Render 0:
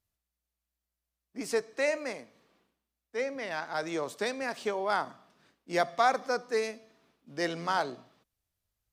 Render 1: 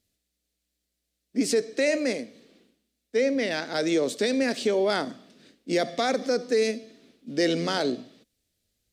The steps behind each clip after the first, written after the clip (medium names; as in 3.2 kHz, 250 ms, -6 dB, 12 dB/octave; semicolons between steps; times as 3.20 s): graphic EQ 250/500/1000/2000/4000/8000 Hz +12/+8/-11/+4/+8/+6 dB; peak limiter -18.5 dBFS, peak gain reduction 8.5 dB; trim +3.5 dB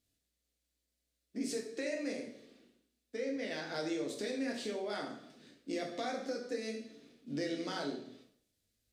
compression 3:1, threshold -33 dBFS, peak gain reduction 10.5 dB; plate-style reverb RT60 0.59 s, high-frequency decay 0.85×, DRR -0.5 dB; trim -7.5 dB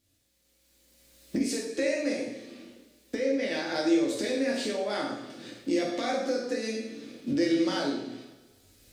recorder AGC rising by 16 dB/s; two-slope reverb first 0.46 s, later 1.7 s, from -16 dB, DRR 2 dB; trim +6.5 dB